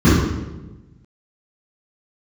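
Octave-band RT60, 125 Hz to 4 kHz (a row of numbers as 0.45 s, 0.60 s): 1.6 s, 1.4 s, 1.3 s, 0.95 s, 0.85 s, 0.80 s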